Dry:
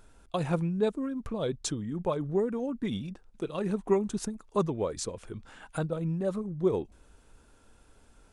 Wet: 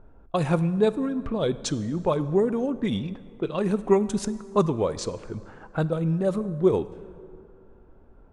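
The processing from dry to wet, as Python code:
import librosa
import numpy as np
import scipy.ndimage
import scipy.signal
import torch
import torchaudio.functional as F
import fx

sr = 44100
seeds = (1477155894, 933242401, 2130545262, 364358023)

y = fx.env_lowpass(x, sr, base_hz=790.0, full_db=-26.5)
y = fx.rev_plate(y, sr, seeds[0], rt60_s=2.4, hf_ratio=0.6, predelay_ms=0, drr_db=14.5)
y = y * librosa.db_to_amplitude(6.0)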